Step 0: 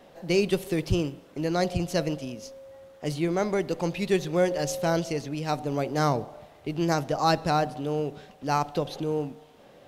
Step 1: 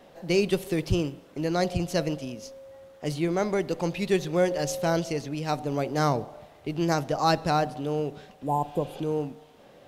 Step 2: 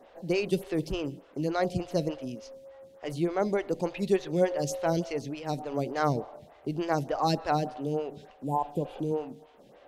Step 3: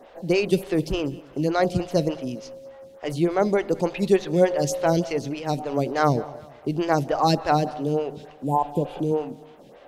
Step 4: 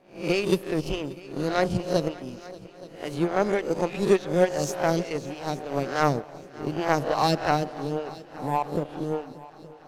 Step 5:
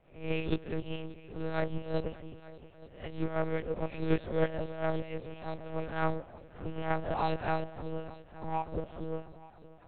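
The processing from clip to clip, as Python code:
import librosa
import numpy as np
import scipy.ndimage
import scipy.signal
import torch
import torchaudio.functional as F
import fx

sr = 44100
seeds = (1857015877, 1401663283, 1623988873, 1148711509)

y1 = fx.spec_repair(x, sr, seeds[0], start_s=8.46, length_s=0.51, low_hz=1100.0, high_hz=6800.0, source='both')
y2 = fx.high_shelf(y1, sr, hz=11000.0, db=-6.5)
y2 = fx.stagger_phaser(y2, sr, hz=3.4)
y3 = fx.echo_feedback(y2, sr, ms=197, feedback_pct=41, wet_db=-22)
y3 = y3 * librosa.db_to_amplitude(6.5)
y4 = fx.spec_swells(y3, sr, rise_s=0.54)
y4 = fx.power_curve(y4, sr, exponent=1.4)
y4 = fx.echo_heads(y4, sr, ms=291, heads='second and third', feedback_pct=55, wet_db=-20.5)
y5 = fx.lpc_monotone(y4, sr, seeds[1], pitch_hz=160.0, order=8)
y5 = y5 * librosa.db_to_amplitude(-7.5)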